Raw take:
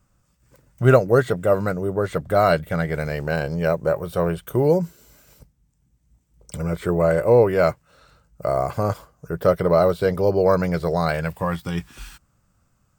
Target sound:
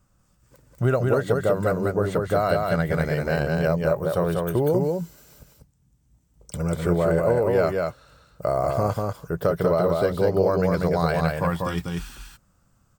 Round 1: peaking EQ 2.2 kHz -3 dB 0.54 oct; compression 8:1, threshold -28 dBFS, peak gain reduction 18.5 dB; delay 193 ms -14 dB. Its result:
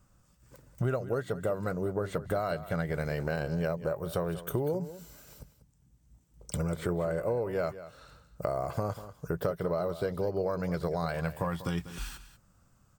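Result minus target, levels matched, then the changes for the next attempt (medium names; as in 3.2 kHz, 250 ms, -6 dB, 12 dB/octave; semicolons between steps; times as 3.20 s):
compression: peak gain reduction +9 dB; echo-to-direct -11 dB
change: compression 8:1, threshold -17.5 dBFS, peak gain reduction 9.5 dB; change: delay 193 ms -3 dB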